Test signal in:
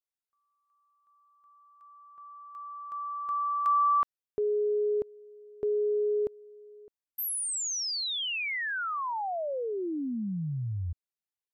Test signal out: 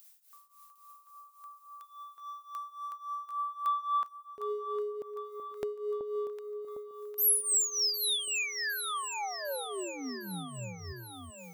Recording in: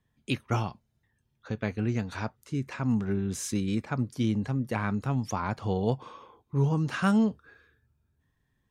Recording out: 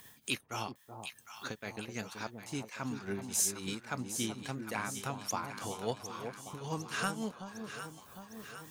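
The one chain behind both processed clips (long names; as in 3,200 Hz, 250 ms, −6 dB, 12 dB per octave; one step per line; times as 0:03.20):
RIAA equalisation recording
leveller curve on the samples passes 1
upward compression, threshold −25 dBFS
shaped tremolo triangle 3.6 Hz, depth 90%
delay that swaps between a low-pass and a high-pass 378 ms, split 960 Hz, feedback 77%, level −7 dB
level −6 dB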